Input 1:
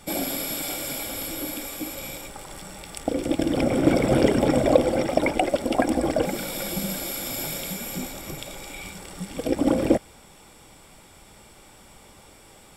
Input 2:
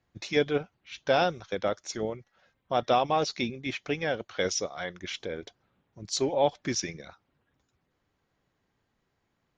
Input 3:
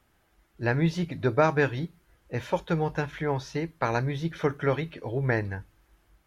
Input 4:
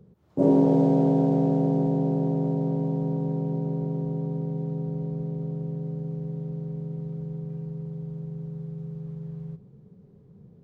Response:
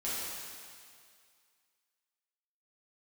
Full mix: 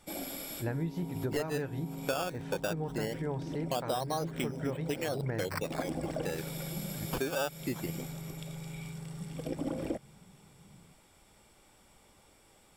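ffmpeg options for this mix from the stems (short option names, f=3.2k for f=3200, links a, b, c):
-filter_complex "[0:a]volume=-12dB[a];[1:a]afwtdn=0.0224,acrusher=samples=15:mix=1:aa=0.000001:lfo=1:lforange=15:lforate=0.21,adelay=1000,volume=1dB[b];[2:a]tiltshelf=f=970:g=5,volume=-8.5dB,asplit=2[c][d];[3:a]acompressor=threshold=-31dB:ratio=6,lowshelf=f=410:g=-7.5,aecho=1:1:0.9:0.8,adelay=300,volume=-4.5dB[e];[d]apad=whole_len=562902[f];[a][f]sidechaincompress=threshold=-45dB:ratio=4:attack=16:release=252[g];[g][b][c][e]amix=inputs=4:normalize=0,acompressor=threshold=-30dB:ratio=6"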